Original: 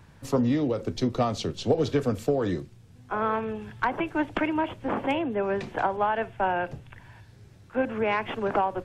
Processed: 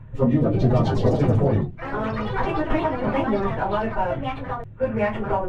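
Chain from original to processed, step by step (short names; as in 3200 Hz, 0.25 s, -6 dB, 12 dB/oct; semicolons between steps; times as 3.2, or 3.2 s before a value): Wiener smoothing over 9 samples; plain phase-vocoder stretch 0.62×; tone controls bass +9 dB, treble -6 dB; reverb RT60 0.25 s, pre-delay 4 ms, DRR -1.5 dB; echoes that change speed 0.285 s, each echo +4 st, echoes 3, each echo -6 dB; high shelf 8600 Hz -4 dB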